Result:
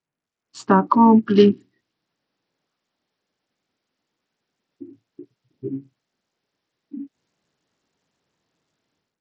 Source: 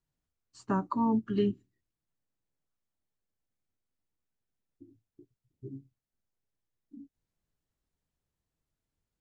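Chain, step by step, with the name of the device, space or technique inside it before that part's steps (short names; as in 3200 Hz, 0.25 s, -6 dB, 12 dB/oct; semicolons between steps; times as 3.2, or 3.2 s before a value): Bluetooth headset (HPF 210 Hz 12 dB/oct; AGC gain up to 13.5 dB; downsampling 16000 Hz; gain +3.5 dB; SBC 64 kbps 44100 Hz)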